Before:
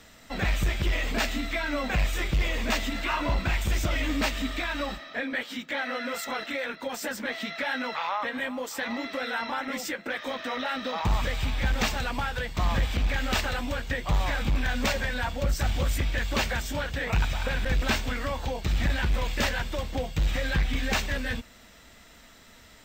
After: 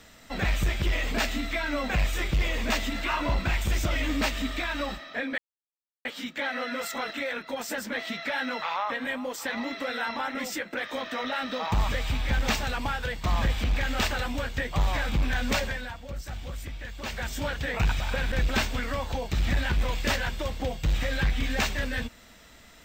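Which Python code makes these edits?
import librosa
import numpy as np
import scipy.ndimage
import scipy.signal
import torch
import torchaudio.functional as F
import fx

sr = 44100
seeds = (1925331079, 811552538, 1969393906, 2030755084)

y = fx.edit(x, sr, fx.insert_silence(at_s=5.38, length_s=0.67),
    fx.fade_down_up(start_s=14.91, length_s=1.81, db=-10.5, fade_s=0.36), tone=tone)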